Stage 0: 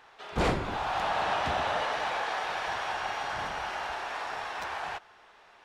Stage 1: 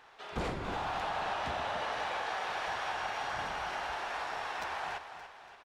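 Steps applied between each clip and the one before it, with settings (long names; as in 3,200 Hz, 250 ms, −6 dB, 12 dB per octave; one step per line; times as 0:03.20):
downward compressor, threshold −30 dBFS, peak gain reduction 8 dB
on a send: repeating echo 286 ms, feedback 49%, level −10.5 dB
on the sum: level −2 dB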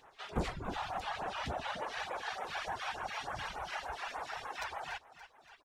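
reverb reduction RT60 1.3 s
all-pass phaser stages 2, 3.4 Hz, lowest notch 230–4,500 Hz
level +2 dB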